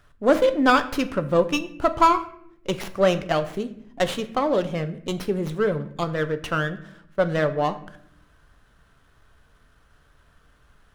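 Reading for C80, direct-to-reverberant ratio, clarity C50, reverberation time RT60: 17.0 dB, 9.0 dB, 14.5 dB, 0.70 s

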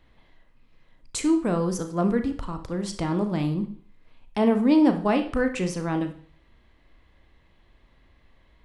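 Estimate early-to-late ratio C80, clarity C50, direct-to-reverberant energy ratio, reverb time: 15.0 dB, 11.0 dB, 7.0 dB, 0.50 s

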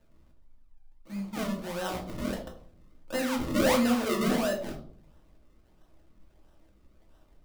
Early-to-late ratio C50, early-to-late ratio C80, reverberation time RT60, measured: 9.0 dB, 13.0 dB, 0.55 s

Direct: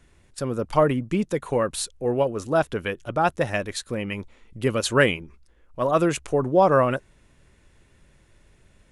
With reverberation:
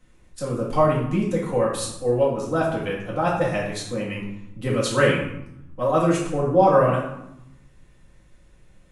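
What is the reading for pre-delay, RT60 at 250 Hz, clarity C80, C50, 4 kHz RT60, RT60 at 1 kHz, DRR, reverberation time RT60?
4 ms, 1.2 s, 6.5 dB, 3.0 dB, 0.55 s, 0.85 s, -6.0 dB, 0.80 s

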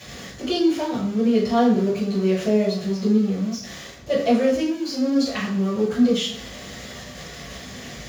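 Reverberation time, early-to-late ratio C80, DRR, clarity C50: 0.60 s, 9.0 dB, -12.5 dB, 5.0 dB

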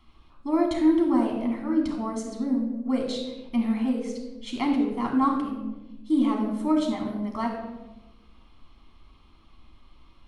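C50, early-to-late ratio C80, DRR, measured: 4.0 dB, 6.5 dB, 0.0 dB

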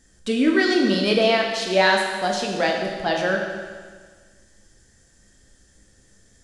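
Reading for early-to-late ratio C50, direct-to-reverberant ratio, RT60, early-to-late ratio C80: 3.0 dB, 0.5 dB, 1.6 s, 4.5 dB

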